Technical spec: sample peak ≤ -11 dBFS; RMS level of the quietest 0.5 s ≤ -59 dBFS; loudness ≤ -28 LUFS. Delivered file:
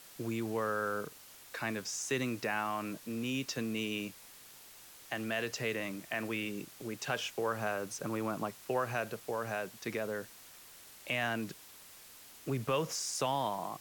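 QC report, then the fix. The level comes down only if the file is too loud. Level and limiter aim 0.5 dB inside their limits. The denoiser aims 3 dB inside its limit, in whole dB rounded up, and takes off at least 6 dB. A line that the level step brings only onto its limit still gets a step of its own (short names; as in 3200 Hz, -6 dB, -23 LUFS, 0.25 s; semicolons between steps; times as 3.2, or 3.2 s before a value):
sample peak -21.0 dBFS: OK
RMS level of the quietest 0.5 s -55 dBFS: fail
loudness -36.5 LUFS: OK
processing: denoiser 7 dB, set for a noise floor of -55 dBFS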